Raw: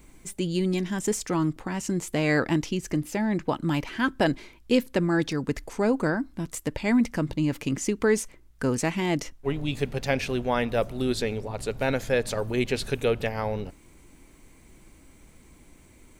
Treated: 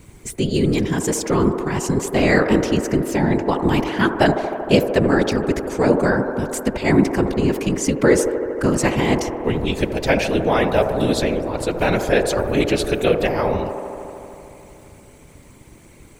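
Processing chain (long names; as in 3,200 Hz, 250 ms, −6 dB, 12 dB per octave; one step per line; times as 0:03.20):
random phases in short frames
delay with a band-pass on its return 77 ms, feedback 84%, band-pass 620 Hz, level −7.5 dB
level +7 dB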